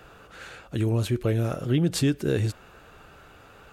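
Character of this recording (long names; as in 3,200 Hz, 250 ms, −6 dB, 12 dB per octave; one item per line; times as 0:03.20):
background noise floor −51 dBFS
spectral slope −7.0 dB per octave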